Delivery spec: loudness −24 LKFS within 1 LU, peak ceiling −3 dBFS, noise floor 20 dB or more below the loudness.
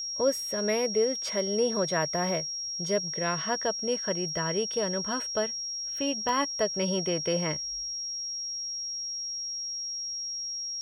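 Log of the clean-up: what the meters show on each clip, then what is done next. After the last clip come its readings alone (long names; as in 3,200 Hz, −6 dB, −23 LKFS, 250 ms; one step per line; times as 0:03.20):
number of dropouts 1; longest dropout 1.6 ms; interfering tone 5,600 Hz; level of the tone −32 dBFS; integrated loudness −29.0 LKFS; sample peak −14.5 dBFS; target loudness −24.0 LKFS
→ repair the gap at 0:06.29, 1.6 ms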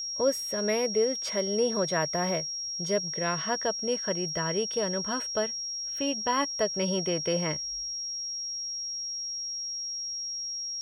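number of dropouts 0; interfering tone 5,600 Hz; level of the tone −32 dBFS
→ notch filter 5,600 Hz, Q 30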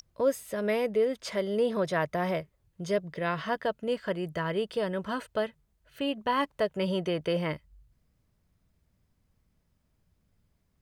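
interfering tone none found; integrated loudness −30.5 LKFS; sample peak −15.5 dBFS; target loudness −24.0 LKFS
→ level +6.5 dB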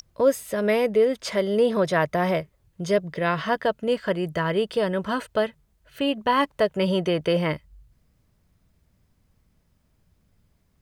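integrated loudness −24.0 LKFS; sample peak −9.0 dBFS; background noise floor −67 dBFS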